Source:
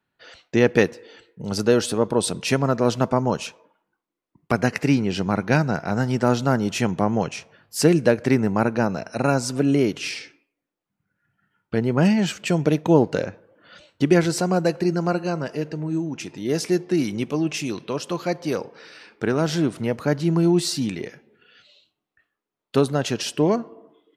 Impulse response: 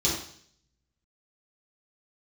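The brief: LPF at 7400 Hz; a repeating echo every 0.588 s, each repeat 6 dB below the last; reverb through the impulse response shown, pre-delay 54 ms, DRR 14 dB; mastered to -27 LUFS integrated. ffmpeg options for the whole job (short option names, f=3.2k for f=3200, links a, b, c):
-filter_complex "[0:a]lowpass=7.4k,aecho=1:1:588|1176|1764|2352|2940|3528:0.501|0.251|0.125|0.0626|0.0313|0.0157,asplit=2[a][b];[1:a]atrim=start_sample=2205,adelay=54[c];[b][c]afir=irnorm=-1:irlink=0,volume=-24.5dB[d];[a][d]amix=inputs=2:normalize=0,volume=-5.5dB"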